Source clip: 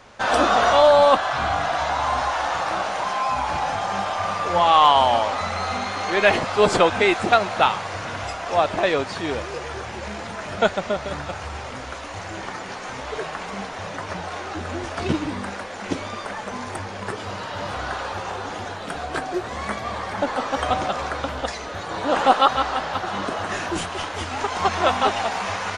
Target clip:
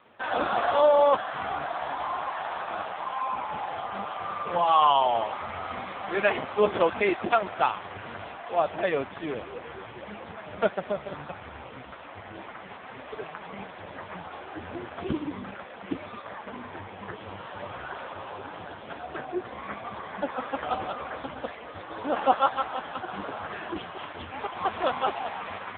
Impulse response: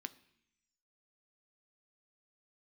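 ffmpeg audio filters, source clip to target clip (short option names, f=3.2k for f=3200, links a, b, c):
-af "volume=-4.5dB" -ar 8000 -c:a libopencore_amrnb -b:a 5150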